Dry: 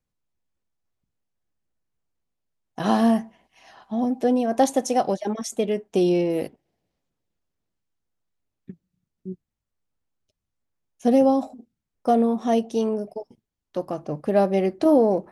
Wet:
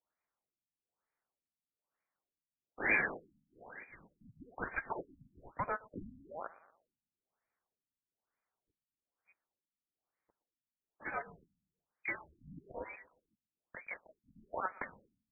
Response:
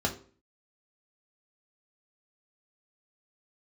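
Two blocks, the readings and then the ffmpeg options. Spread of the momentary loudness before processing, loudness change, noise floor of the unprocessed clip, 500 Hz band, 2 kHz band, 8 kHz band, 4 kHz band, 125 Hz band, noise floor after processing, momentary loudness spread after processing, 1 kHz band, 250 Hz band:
16 LU, −17.5 dB, −83 dBFS, −26.0 dB, +3.0 dB, below −40 dB, below −40 dB, −21.0 dB, below −85 dBFS, 20 LU, −17.0 dB, −30.5 dB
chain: -filter_complex "[0:a]lowshelf=frequency=780:width_type=q:width=3:gain=9.5,acrossover=split=970[link_01][link_02];[link_01]acompressor=threshold=-17dB:ratio=6[link_03];[link_03][link_02]amix=inputs=2:normalize=0,aecho=1:1:119|238|357|476:0.0891|0.0446|0.0223|0.0111,lowpass=frequency=2900:width_type=q:width=0.5098,lowpass=frequency=2900:width_type=q:width=0.6013,lowpass=frequency=2900:width_type=q:width=0.9,lowpass=frequency=2900:width_type=q:width=2.563,afreqshift=-3400,afftfilt=real='re*lt(b*sr/1024,260*pow(2500/260,0.5+0.5*sin(2*PI*1.1*pts/sr)))':imag='im*lt(b*sr/1024,260*pow(2500/260,0.5+0.5*sin(2*PI*1.1*pts/sr)))':win_size=1024:overlap=0.75,volume=9dB"

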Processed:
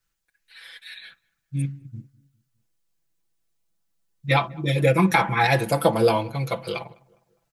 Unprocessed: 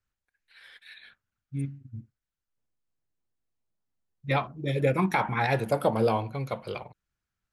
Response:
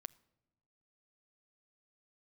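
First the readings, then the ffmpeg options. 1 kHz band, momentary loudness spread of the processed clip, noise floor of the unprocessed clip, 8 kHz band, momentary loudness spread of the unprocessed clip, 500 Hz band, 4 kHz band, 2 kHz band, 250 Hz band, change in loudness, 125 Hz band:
+6.0 dB, 21 LU, below −85 dBFS, +12.0 dB, 19 LU, +5.0 dB, +10.0 dB, +7.5 dB, +5.5 dB, +6.0 dB, +6.0 dB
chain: -filter_complex "[0:a]highshelf=frequency=2800:gain=8,aecho=1:1:6:0.86,asplit=2[link_01][link_02];[link_02]adelay=204,lowpass=frequency=1400:poles=1,volume=-24dB,asplit=2[link_03][link_04];[link_04]adelay=204,lowpass=frequency=1400:poles=1,volume=0.49,asplit=2[link_05][link_06];[link_06]adelay=204,lowpass=frequency=1400:poles=1,volume=0.49[link_07];[link_01][link_03][link_05][link_07]amix=inputs=4:normalize=0,volume=2.5dB"

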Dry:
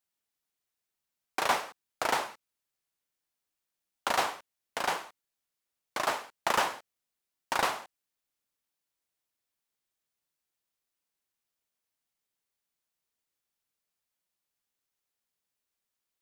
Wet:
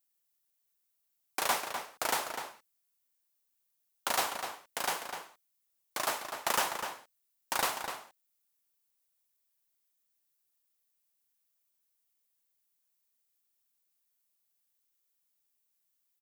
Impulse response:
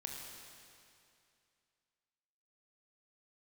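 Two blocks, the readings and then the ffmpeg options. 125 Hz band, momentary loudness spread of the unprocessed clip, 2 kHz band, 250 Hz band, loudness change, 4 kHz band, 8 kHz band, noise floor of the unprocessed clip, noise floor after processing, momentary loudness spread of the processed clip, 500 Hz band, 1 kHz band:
−3.5 dB, 13 LU, −2.5 dB, −3.5 dB, −2.0 dB, 0.0 dB, +4.0 dB, below −85 dBFS, −79 dBFS, 11 LU, −3.5 dB, −3.5 dB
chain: -filter_complex "[0:a]aemphasis=mode=production:type=50kf,asplit=2[link_01][link_02];[link_02]adelay=250.7,volume=-7dB,highshelf=frequency=4000:gain=-5.64[link_03];[link_01][link_03]amix=inputs=2:normalize=0,volume=-4.5dB"

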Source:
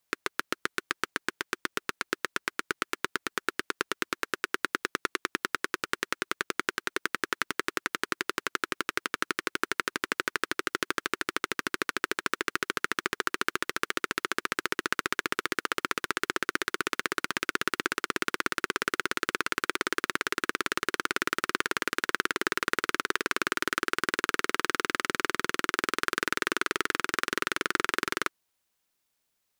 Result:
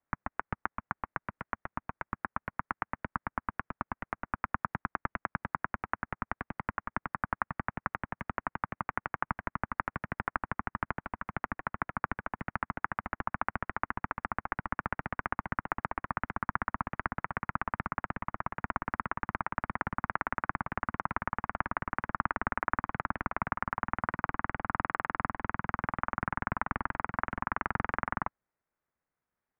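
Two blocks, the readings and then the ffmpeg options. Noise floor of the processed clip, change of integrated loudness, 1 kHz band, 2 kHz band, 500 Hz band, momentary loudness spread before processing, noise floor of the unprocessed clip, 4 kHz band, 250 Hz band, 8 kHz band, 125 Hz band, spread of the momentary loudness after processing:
below −85 dBFS, −5.0 dB, 0.0 dB, −7.5 dB, −8.5 dB, 4 LU, −79 dBFS, below −25 dB, −3.5 dB, below −40 dB, +9.5 dB, 5 LU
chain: -af "highpass=frequency=180:width_type=q:width=0.5412,highpass=frequency=180:width_type=q:width=1.307,lowpass=frequency=2200:width_type=q:width=0.5176,lowpass=frequency=2200:width_type=q:width=0.7071,lowpass=frequency=2200:width_type=q:width=1.932,afreqshift=-300,aeval=exprs='val(0)*sin(2*PI*150*n/s)':channel_layout=same"

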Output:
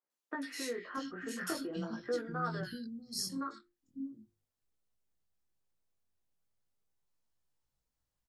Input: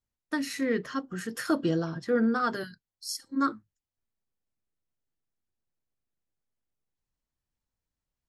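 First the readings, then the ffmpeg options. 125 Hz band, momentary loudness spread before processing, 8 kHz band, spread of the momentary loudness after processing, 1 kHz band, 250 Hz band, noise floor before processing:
−7.0 dB, 11 LU, −2.5 dB, 8 LU, −8.5 dB, −11.0 dB, below −85 dBFS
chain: -filter_complex "[0:a]bandreject=frequency=50:width_type=h:width=6,bandreject=frequency=100:width_type=h:width=6,bandreject=frequency=150:width_type=h:width=6,bandreject=frequency=200:width_type=h:width=6,bandreject=frequency=250:width_type=h:width=6,bandreject=frequency=300:width_type=h:width=6,bandreject=frequency=350:width_type=h:width=6,acompressor=threshold=-36dB:ratio=6,flanger=delay=16:depth=6.7:speed=0.43,acrossover=split=260|2100[link_01][link_02][link_03];[link_03]adelay=100[link_04];[link_01]adelay=640[link_05];[link_05][link_02][link_04]amix=inputs=3:normalize=0,volume=5dB"

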